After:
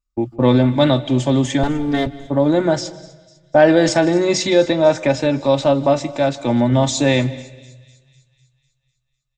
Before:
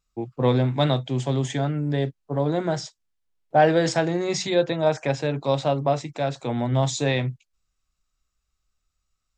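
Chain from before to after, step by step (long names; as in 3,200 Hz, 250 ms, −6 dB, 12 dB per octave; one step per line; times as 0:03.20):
0:01.63–0:02.07: lower of the sound and its delayed copy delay 4.4 ms
noise gate −41 dBFS, range −18 dB
low-shelf EQ 190 Hz +7 dB
comb filter 3.4 ms, depth 59%
in parallel at 0 dB: brickwall limiter −12 dBFS, peak gain reduction 7.5 dB
on the sum: delay with a high-pass on its return 250 ms, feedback 57%, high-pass 3,300 Hz, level −19 dB
on a send at −17.5 dB: convolution reverb RT60 1.2 s, pre-delay 146 ms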